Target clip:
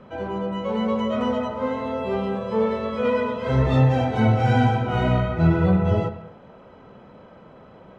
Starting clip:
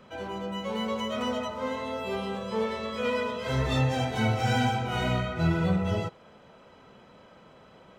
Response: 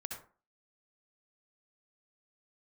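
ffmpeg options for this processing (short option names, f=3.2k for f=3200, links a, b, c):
-filter_complex "[0:a]lowpass=f=1k:p=1,asplit=2[a][b];[1:a]atrim=start_sample=2205,lowpass=3.9k,adelay=99[c];[b][c]afir=irnorm=-1:irlink=0,volume=-10.5dB[d];[a][d]amix=inputs=2:normalize=0,volume=8dB"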